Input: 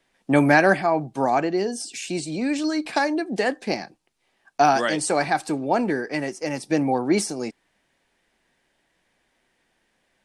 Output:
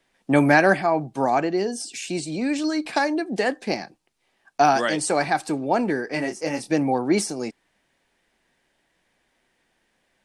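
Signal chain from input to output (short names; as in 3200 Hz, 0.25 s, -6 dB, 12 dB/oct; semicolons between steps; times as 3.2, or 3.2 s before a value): 6.07–6.71 doubler 25 ms -5 dB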